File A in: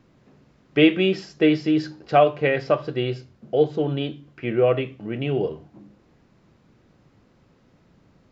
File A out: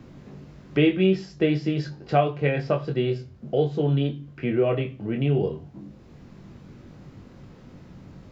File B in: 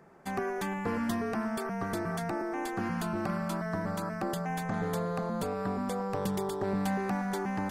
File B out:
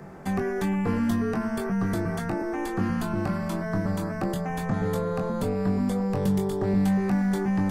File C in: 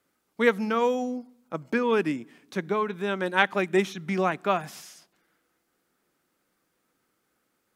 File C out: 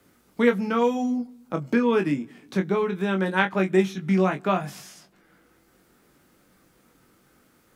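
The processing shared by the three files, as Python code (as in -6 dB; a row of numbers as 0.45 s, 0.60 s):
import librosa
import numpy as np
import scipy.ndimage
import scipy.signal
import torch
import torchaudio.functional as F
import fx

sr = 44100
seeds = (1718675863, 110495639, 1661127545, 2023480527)

p1 = fx.low_shelf(x, sr, hz=220.0, db=11.0)
p2 = p1 + fx.room_early_taps(p1, sr, ms=(21, 37), db=(-5.0, -16.0), dry=0)
p3 = fx.band_squash(p2, sr, depth_pct=40)
y = p3 * 10.0 ** (-26 / 20.0) / np.sqrt(np.mean(np.square(p3)))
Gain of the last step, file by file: -5.0 dB, 0.0 dB, -1.5 dB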